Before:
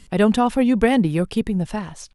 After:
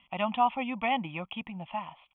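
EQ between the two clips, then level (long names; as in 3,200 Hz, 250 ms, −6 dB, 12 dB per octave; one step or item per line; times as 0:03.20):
high-pass filter 690 Hz 6 dB per octave
Chebyshev low-pass with heavy ripple 3,400 Hz, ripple 6 dB
phaser with its sweep stopped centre 1,600 Hz, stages 6
+1.0 dB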